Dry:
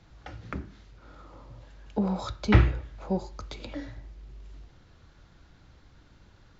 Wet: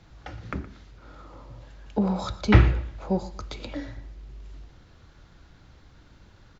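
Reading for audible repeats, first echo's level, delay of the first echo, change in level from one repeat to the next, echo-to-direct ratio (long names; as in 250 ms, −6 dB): 2, −16.5 dB, 118 ms, −11.0 dB, −16.0 dB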